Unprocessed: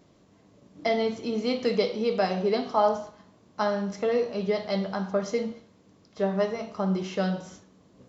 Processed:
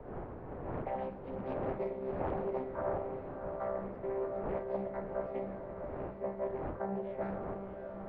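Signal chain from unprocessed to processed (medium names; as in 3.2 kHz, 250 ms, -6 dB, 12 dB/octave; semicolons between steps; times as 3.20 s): vocoder on a held chord bare fifth, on C3; wind noise 150 Hz -24 dBFS; three-band isolator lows -23 dB, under 450 Hz, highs -18 dB, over 2.2 kHz; reverse; compression 6:1, threshold -35 dBFS, peak gain reduction 12 dB; reverse; bit crusher 12-bit; distance through air 390 m; on a send: echo that smears into a reverb 668 ms, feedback 41%, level -5.5 dB; on the sum: loudspeaker Doppler distortion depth 0.51 ms; trim +2.5 dB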